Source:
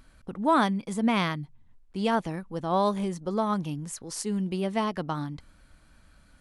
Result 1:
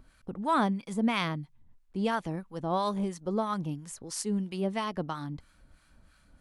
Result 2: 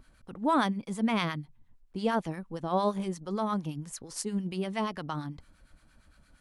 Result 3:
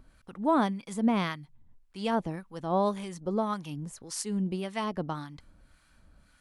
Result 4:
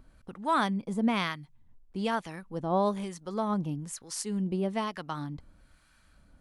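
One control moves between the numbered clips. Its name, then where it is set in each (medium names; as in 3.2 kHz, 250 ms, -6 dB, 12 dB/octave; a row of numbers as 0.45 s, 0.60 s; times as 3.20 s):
harmonic tremolo, rate: 3 Hz, 8.7 Hz, 1.8 Hz, 1.1 Hz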